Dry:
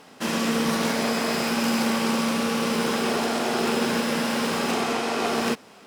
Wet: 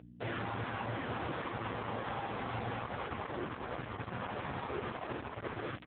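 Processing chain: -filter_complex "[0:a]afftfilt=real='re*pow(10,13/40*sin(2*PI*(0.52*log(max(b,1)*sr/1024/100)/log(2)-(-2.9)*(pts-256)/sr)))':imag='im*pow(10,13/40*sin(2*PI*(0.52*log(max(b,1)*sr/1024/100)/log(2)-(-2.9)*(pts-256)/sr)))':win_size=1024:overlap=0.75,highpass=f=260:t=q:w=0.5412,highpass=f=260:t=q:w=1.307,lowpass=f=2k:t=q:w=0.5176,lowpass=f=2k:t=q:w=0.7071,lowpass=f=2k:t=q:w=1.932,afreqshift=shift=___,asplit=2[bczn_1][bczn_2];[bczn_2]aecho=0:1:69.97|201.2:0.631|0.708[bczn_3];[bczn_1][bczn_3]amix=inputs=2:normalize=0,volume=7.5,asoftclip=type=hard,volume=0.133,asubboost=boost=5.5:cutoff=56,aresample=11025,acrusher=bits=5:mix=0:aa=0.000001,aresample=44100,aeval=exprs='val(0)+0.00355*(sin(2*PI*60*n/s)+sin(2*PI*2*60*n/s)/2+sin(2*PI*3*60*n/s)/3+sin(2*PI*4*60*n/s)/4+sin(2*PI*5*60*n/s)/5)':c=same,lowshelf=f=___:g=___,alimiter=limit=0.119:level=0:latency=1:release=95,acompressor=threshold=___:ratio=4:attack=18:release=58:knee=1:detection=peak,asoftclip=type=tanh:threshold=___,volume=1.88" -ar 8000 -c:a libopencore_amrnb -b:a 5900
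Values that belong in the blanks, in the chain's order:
-340, 260, -3.5, 0.0316, 0.0133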